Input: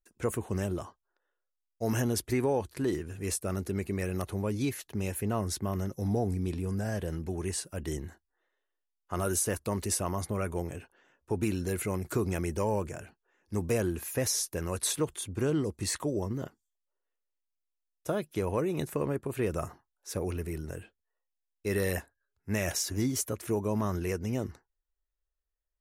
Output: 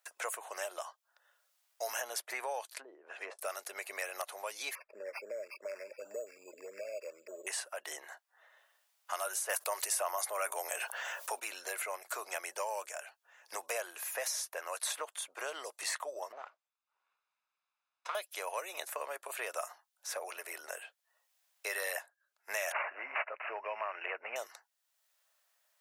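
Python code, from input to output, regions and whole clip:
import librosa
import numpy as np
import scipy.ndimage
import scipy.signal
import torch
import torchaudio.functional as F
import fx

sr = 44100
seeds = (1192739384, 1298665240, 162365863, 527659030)

y = fx.chain(x, sr, fx.brickwall_highpass(low_hz=170.0),
    fx.env_lowpass_down(base_hz=310.0, full_db=-28.5), at=(2.73, 3.39))
y = fx.chain(y, sr, fx.brickwall_bandstop(low_hz=640.0, high_hz=12000.0),
    fx.resample_linear(factor=6), at=(4.75, 7.47))
y = fx.chain(y, sr, fx.highpass(hz=230.0, slope=12),
    fx.high_shelf(hz=5300.0, db=11.0),
    fx.env_flatten(amount_pct=50), at=(9.49, 11.4))
y = fx.chain(y, sr, fx.lower_of_two(delay_ms=0.8),
    fx.spacing_loss(db_at_10k=30), at=(16.32, 18.15))
y = fx.chain(y, sr, fx.resample_bad(factor=8, down='none', up='filtered'),
    fx.band_squash(depth_pct=70), at=(22.72, 24.36))
y = scipy.signal.sosfilt(scipy.signal.cheby1(4, 1.0, 610.0, 'highpass', fs=sr, output='sos'), y)
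y = fx.band_squash(y, sr, depth_pct=70)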